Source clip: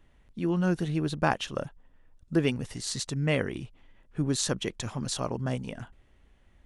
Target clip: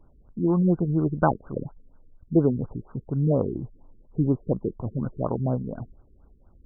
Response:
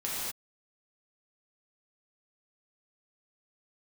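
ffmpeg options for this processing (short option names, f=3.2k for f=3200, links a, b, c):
-filter_complex "[0:a]asettb=1/sr,asplit=3[a][b][c];[a]atrim=end=3.324[d];[b]atrim=start=3.32:end=4.99,asetpts=PTS-STARTPTS,afade=t=in:d=0.004:c=qsin,afade=t=out:st=1.666:d=0.004:c=qsin,asuperstop=centerf=1900:order=8:qfactor=1[e];[c]atrim=start=4.986[f];[d][e]acrossfade=d=0.004:c1=hsin:c2=qsin[g];[g][f]acrossfade=d=0.004:c1=qsin:c2=hsin,afftfilt=real='re*lt(b*sr/1024,450*pow(1600/450,0.5+0.5*sin(2*PI*4.2*pts/sr)))':imag='im*lt(b*sr/1024,450*pow(1600/450,0.5+0.5*sin(2*PI*4.2*pts/sr)))':win_size=1024:overlap=0.75,volume=5.5dB"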